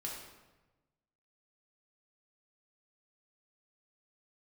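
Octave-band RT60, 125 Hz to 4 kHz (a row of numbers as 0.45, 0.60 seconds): 1.6, 1.3, 1.2, 1.1, 0.95, 0.80 seconds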